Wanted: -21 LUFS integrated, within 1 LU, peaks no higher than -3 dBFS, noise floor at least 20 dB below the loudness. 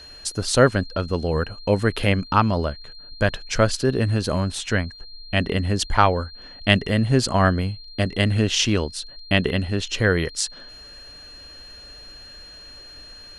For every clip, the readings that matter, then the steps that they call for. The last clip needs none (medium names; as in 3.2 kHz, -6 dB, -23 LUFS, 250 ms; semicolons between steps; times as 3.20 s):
steady tone 4.2 kHz; tone level -41 dBFS; loudness -22.0 LUFS; peak level -1.5 dBFS; loudness target -21.0 LUFS
-> band-stop 4.2 kHz, Q 30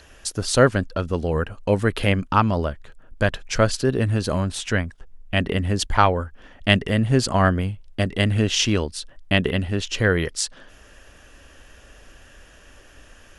steady tone not found; loudness -22.0 LUFS; peak level -1.5 dBFS; loudness target -21.0 LUFS
-> trim +1 dB; peak limiter -3 dBFS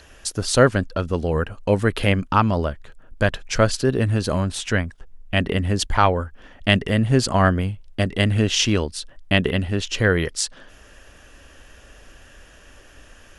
loudness -21.0 LUFS; peak level -3.0 dBFS; noise floor -49 dBFS